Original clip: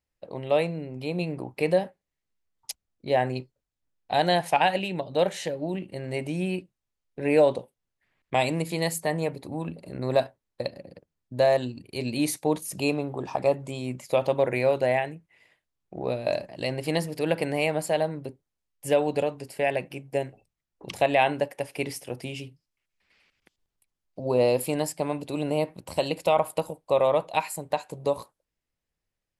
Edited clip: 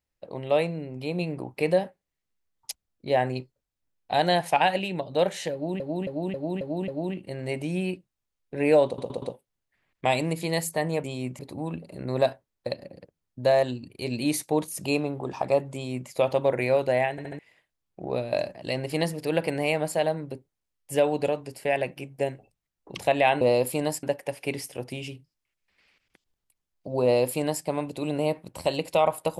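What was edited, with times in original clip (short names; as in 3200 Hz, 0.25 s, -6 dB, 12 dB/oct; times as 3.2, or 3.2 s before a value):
5.53–5.8 loop, 6 plays
7.51 stutter 0.12 s, 4 plays
13.68–14.03 copy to 9.33
15.05 stutter in place 0.07 s, 4 plays
24.35–24.97 copy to 21.35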